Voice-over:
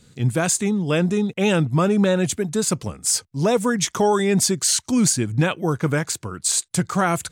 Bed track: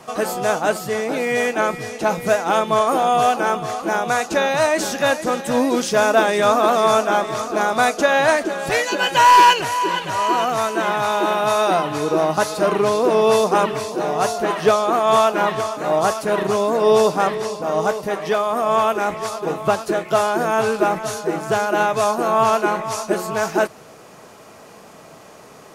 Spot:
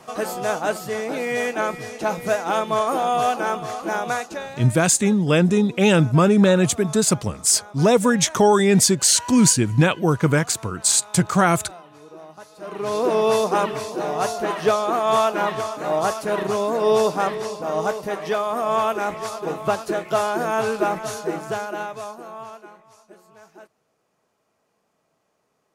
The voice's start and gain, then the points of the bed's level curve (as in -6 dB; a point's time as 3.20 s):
4.40 s, +3.0 dB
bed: 4.11 s -4 dB
4.74 s -23.5 dB
12.51 s -23.5 dB
12.97 s -3.5 dB
21.30 s -3.5 dB
22.85 s -27.5 dB